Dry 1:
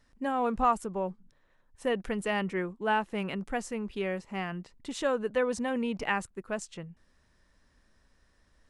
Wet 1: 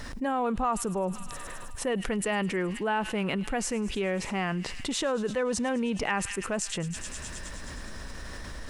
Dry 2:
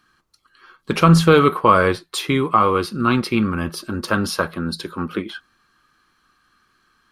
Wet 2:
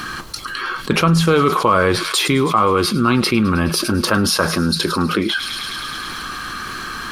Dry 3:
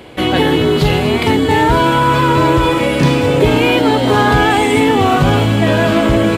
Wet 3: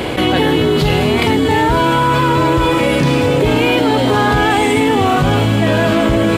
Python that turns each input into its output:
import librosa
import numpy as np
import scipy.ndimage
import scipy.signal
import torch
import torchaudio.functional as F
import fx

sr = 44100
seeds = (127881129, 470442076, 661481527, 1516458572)

y = fx.echo_wet_highpass(x, sr, ms=105, feedback_pct=75, hz=3800.0, wet_db=-13.0)
y = fx.env_flatten(y, sr, amount_pct=70)
y = F.gain(torch.from_numpy(y), -4.0).numpy()